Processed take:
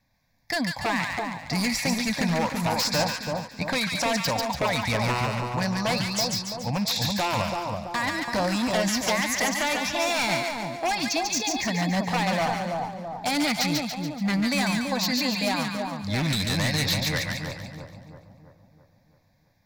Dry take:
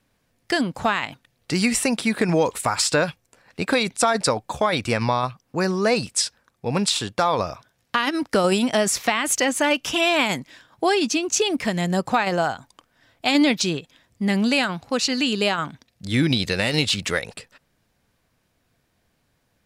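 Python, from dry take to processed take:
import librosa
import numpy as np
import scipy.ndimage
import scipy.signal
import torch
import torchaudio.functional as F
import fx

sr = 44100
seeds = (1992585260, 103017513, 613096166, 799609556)

p1 = fx.fixed_phaser(x, sr, hz=2000.0, stages=8)
p2 = 10.0 ** (-20.0 / 20.0) * (np.abs((p1 / 10.0 ** (-20.0 / 20.0) + 3.0) % 4.0 - 2.0) - 1.0)
y = p2 + fx.echo_split(p2, sr, split_hz=1100.0, low_ms=332, high_ms=143, feedback_pct=52, wet_db=-3, dry=0)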